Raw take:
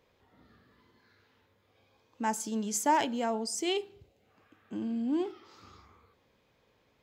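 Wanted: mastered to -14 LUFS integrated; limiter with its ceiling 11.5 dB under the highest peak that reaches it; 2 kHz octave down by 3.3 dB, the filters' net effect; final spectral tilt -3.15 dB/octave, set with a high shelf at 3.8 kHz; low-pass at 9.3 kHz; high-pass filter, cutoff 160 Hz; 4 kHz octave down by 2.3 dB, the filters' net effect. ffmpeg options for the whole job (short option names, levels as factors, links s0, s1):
-af "highpass=160,lowpass=9300,equalizer=f=2000:t=o:g=-4.5,highshelf=f=3800:g=7.5,equalizer=f=4000:t=o:g=-6.5,volume=11.2,alimiter=limit=0.562:level=0:latency=1"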